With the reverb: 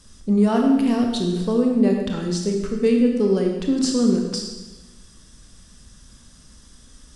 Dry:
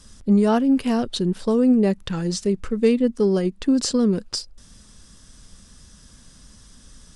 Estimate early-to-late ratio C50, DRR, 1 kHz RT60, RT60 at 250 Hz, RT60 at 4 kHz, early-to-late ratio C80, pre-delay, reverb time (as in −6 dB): 3.5 dB, 1.5 dB, 1.1 s, 1.3 s, 1.1 s, 5.5 dB, 22 ms, 1.1 s